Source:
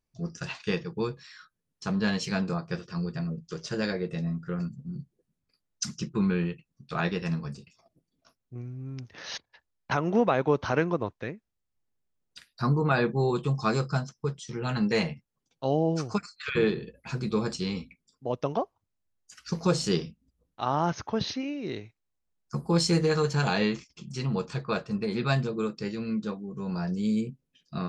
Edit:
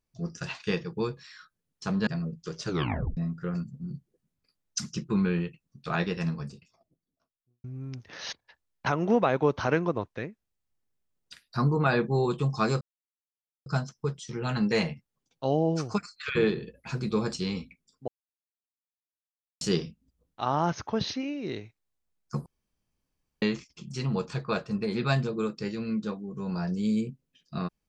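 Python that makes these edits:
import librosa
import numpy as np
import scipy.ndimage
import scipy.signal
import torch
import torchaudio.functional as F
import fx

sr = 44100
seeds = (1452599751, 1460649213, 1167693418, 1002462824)

y = fx.studio_fade_out(x, sr, start_s=7.34, length_s=1.35)
y = fx.edit(y, sr, fx.cut(start_s=2.07, length_s=1.05),
    fx.tape_stop(start_s=3.7, length_s=0.52),
    fx.insert_silence(at_s=13.86, length_s=0.85),
    fx.silence(start_s=18.28, length_s=1.53),
    fx.room_tone_fill(start_s=22.66, length_s=0.96), tone=tone)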